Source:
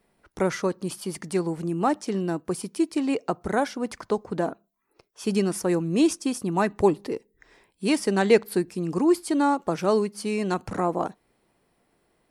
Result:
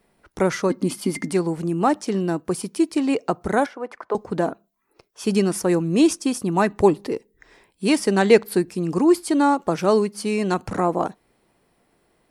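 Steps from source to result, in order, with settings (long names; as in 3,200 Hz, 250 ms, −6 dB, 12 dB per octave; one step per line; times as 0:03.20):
0:00.70–0:01.33: hollow resonant body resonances 260/2,100 Hz, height 18 dB, ringing for 85 ms
0:03.66–0:04.15: three-way crossover with the lows and the highs turned down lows −24 dB, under 360 Hz, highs −19 dB, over 2,200 Hz
level +4 dB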